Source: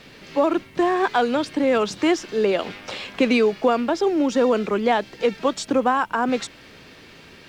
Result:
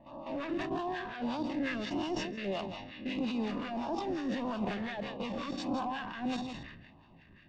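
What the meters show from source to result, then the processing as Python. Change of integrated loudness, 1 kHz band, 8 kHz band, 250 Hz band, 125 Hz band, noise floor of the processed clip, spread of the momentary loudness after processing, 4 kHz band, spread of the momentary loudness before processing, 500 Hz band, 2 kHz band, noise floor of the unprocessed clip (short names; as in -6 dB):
-14.5 dB, -15.0 dB, -18.0 dB, -11.5 dB, -5.5 dB, -58 dBFS, 6 LU, -11.5 dB, 6 LU, -18.5 dB, -13.5 dB, -47 dBFS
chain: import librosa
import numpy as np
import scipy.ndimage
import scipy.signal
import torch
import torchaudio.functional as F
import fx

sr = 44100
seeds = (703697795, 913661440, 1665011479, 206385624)

y = fx.spec_swells(x, sr, rise_s=0.9)
y = fx.dmg_crackle(y, sr, seeds[0], per_s=380.0, level_db=-27.0)
y = fx.high_shelf(y, sr, hz=5300.0, db=-10.0)
y = y + 0.77 * np.pad(y, (int(1.1 * sr / 1000.0), 0))[:len(y)]
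y = fx.level_steps(y, sr, step_db=12)
y = np.clip(10.0 ** (21.5 / 20.0) * y, -1.0, 1.0) / 10.0 ** (21.5 / 20.0)
y = fx.filter_lfo_notch(y, sr, shape='sine', hz=1.6, low_hz=790.0, high_hz=2000.0, q=0.82)
y = fx.harmonic_tremolo(y, sr, hz=5.6, depth_pct=70, crossover_hz=1000.0)
y = fx.env_lowpass(y, sr, base_hz=2000.0, full_db=-26.0)
y = fx.air_absorb(y, sr, metres=130.0)
y = y + 10.0 ** (-11.5 / 20.0) * np.pad(y, (int(164 * sr / 1000.0), 0))[:len(y)]
y = fx.sustainer(y, sr, db_per_s=41.0)
y = y * 10.0 ** (-5.0 / 20.0)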